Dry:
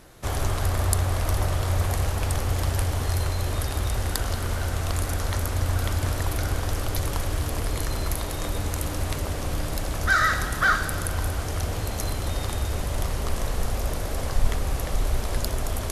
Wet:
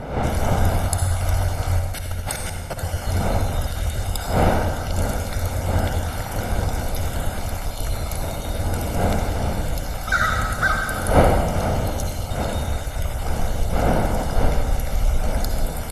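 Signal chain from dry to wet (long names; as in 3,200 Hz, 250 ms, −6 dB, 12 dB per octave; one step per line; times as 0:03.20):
time-frequency cells dropped at random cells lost 31%
wind on the microphone 560 Hz −28 dBFS
0:01.79–0:02.79: compressor whose output falls as the input rises −30 dBFS, ratio −0.5
comb filter 1.4 ms, depth 52%
convolution reverb RT60 1.3 s, pre-delay 48 ms, DRR 3 dB
level −1 dB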